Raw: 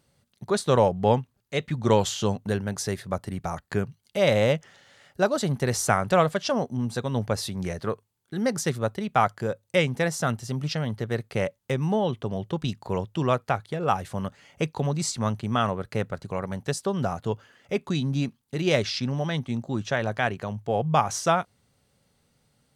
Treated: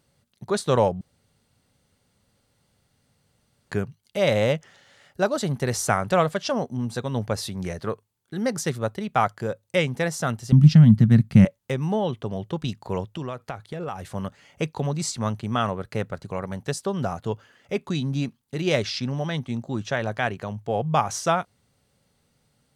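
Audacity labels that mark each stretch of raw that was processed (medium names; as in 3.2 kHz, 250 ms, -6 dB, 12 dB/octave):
1.010000	3.710000	room tone
10.520000	11.450000	resonant low shelf 300 Hz +13 dB, Q 3
13.150000	14.150000	compression 5:1, threshold -28 dBFS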